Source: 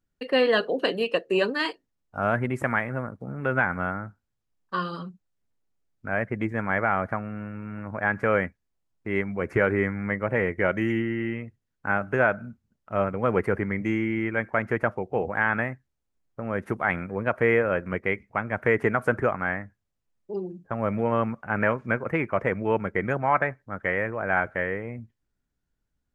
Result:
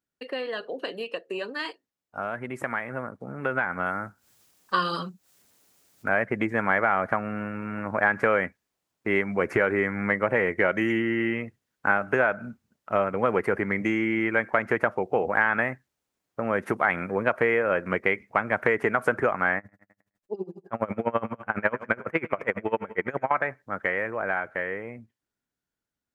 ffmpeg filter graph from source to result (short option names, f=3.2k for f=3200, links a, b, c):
-filter_complex "[0:a]asettb=1/sr,asplit=3[a][b][c];[a]atrim=end=3.864[d];[b]atrim=start=3.86:end=6.09,asetpts=PTS-STARTPTS,afade=t=in:d=0.004:c=qsin,afade=t=out:st=2.226:d=0.004:c=qsin,highshelf=f=4.3k:g=10.5,acompressor=mode=upward:threshold=-47dB:ratio=2.5:attack=3.2:release=140:knee=2.83:detection=peak[e];[c]atrim=start=6.086[f];[d][e]acrossfade=d=0.004:c1=hsin:c2=qsin[g];[g][f]acrossfade=d=0.004:c1=qsin:c2=hsin,asettb=1/sr,asplit=3[h][i][j];[h]atrim=end=19.584[k];[i]atrim=start=19.58:end=23.31,asetpts=PTS-STARTPTS,afade=t=in:d=0.004:c=qsin,afade=t=out:st=3.726:d=0.004:c=qsin,aecho=1:1:105|210|315|420|525:0.168|0.0856|0.0437|0.0223|0.0114,atrim=end_sample=164493,aeval=exprs='val(0)*pow(10,-26*(0.5-0.5*cos(2*PI*12*n/s))/20)':c=same[l];[j]atrim=start=23.306[m];[k][l]acrossfade=d=0.004:c1=hsin:c2=qsin[n];[n][m]acrossfade=d=0.004:c1=qsin:c2=hsin,acompressor=threshold=-25dB:ratio=6,highpass=f=340:p=1,dynaudnorm=f=810:g=9:m=12dB,volume=-2.5dB"